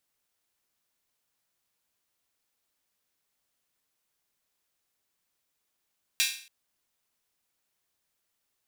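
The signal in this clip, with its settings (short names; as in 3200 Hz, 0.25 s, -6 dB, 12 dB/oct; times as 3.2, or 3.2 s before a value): open hi-hat length 0.28 s, high-pass 2600 Hz, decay 0.47 s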